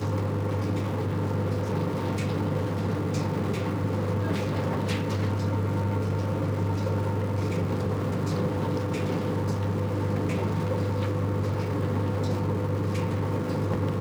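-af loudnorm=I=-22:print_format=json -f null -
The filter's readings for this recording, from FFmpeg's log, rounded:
"input_i" : "-27.9",
"input_tp" : "-14.7",
"input_lra" : "0.5",
"input_thresh" : "-37.9",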